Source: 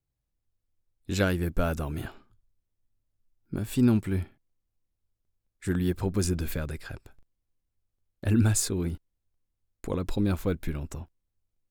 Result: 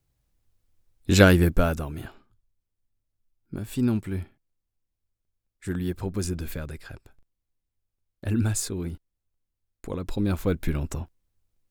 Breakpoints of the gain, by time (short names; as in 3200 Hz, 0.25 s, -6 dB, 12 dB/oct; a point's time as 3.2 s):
1.39 s +10 dB
1.93 s -2 dB
9.99 s -2 dB
10.76 s +6 dB